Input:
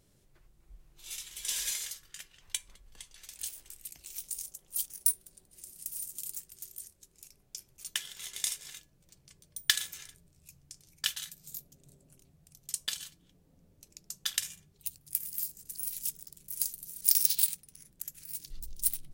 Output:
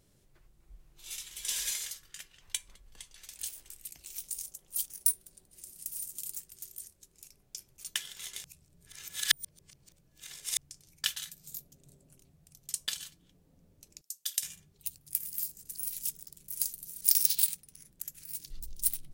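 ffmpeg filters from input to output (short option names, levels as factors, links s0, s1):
-filter_complex "[0:a]asettb=1/sr,asplit=3[s0][s1][s2];[s0]atrim=end=14.014[s3];[s1]atrim=start=14.01:end=14.43,asetpts=PTS-STARTPTS,afade=t=in:d=0.004:c=qsin,afade=t=out:st=0.416:d=0.004:c=qsin,aderivative[s4];[s2]atrim=start=14.426[s5];[s3][s4]acrossfade=d=0.004:c1=hsin:c2=qsin[s6];[s6][s5]acrossfade=d=0.004:c1=qsin:c2=hsin,asplit=3[s7][s8][s9];[s7]atrim=end=8.442[s10];[s8]atrim=start=8.438:end=10.572,asetpts=PTS-STARTPTS,areverse[s11];[s9]atrim=start=10.568[s12];[s10][s11]acrossfade=d=0.004:c1=hsin:c2=hsin[s13];[s13][s12]acrossfade=d=0.004:c1=hsin:c2=hsin"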